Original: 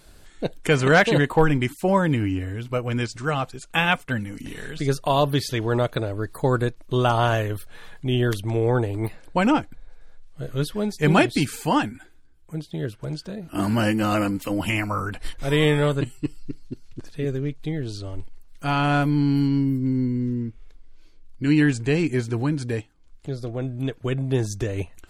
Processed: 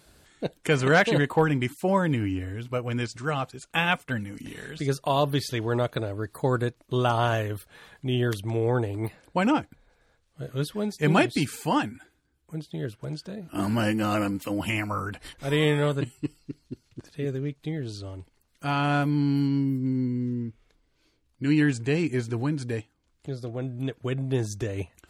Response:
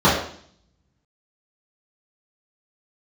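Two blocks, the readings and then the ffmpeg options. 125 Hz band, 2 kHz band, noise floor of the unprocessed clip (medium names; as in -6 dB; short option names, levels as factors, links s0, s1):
-3.5 dB, -3.5 dB, -49 dBFS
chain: -af "highpass=62,volume=0.668"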